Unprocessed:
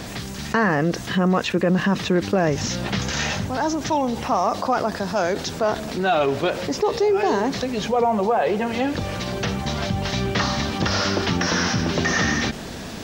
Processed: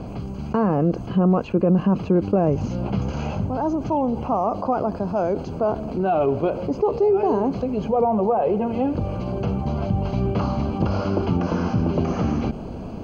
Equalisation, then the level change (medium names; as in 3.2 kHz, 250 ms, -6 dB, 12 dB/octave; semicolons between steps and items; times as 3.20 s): boxcar filter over 24 samples; bass shelf 67 Hz +5.5 dB; +1.5 dB